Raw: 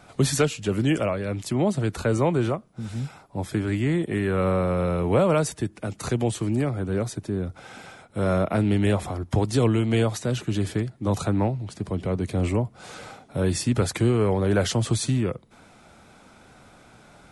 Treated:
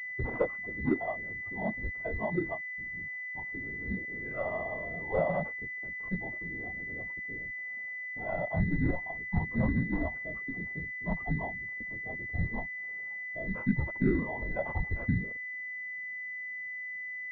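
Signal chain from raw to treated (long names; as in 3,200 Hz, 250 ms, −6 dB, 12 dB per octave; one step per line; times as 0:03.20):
random phases in short frames
noise reduction from a noise print of the clip's start 16 dB
switching amplifier with a slow clock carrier 2,000 Hz
level −5 dB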